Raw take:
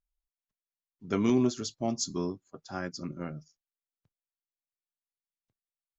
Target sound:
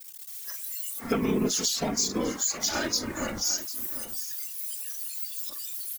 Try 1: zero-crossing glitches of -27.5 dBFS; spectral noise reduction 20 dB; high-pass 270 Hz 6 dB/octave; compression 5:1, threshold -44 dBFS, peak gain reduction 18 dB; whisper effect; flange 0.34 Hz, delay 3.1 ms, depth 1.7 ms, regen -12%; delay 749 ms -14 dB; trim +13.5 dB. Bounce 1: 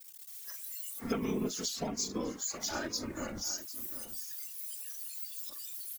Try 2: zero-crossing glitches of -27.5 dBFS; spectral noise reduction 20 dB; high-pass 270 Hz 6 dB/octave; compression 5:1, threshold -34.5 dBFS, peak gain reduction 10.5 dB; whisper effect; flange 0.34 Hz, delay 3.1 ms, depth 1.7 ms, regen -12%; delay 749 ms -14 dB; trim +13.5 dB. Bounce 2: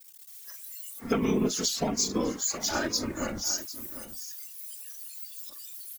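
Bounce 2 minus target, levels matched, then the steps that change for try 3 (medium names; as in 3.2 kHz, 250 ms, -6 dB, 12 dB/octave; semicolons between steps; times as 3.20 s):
zero-crossing glitches: distortion -7 dB
change: zero-crossing glitches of -20.5 dBFS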